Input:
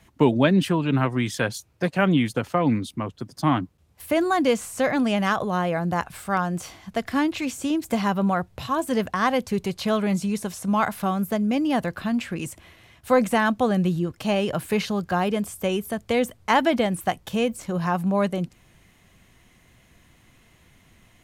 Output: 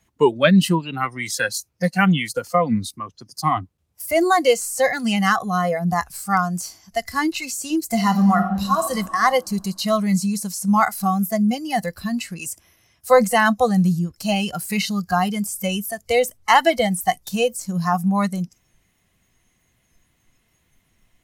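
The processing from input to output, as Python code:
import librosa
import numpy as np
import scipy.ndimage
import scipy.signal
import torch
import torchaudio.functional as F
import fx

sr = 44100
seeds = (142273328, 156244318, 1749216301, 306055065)

y = fx.reverb_throw(x, sr, start_s=7.93, length_s=0.94, rt60_s=2.9, drr_db=3.5)
y = fx.noise_reduce_blind(y, sr, reduce_db=16)
y = fx.high_shelf(y, sr, hz=5300.0, db=4.5)
y = F.gain(torch.from_numpy(y), 6.0).numpy()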